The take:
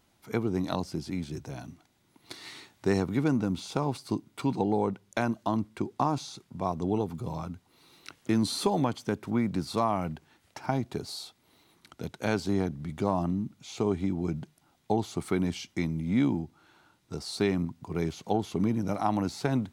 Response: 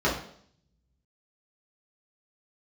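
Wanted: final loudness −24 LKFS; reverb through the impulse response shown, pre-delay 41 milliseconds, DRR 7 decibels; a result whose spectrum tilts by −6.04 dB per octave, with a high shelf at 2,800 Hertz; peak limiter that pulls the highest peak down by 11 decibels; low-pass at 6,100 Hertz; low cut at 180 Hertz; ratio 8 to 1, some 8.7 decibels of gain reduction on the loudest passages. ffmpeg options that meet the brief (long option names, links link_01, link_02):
-filter_complex "[0:a]highpass=180,lowpass=6100,highshelf=frequency=2800:gain=-6.5,acompressor=threshold=-31dB:ratio=8,alimiter=level_in=3dB:limit=-24dB:level=0:latency=1,volume=-3dB,asplit=2[link_01][link_02];[1:a]atrim=start_sample=2205,adelay=41[link_03];[link_02][link_03]afir=irnorm=-1:irlink=0,volume=-21.5dB[link_04];[link_01][link_04]amix=inputs=2:normalize=0,volume=14dB"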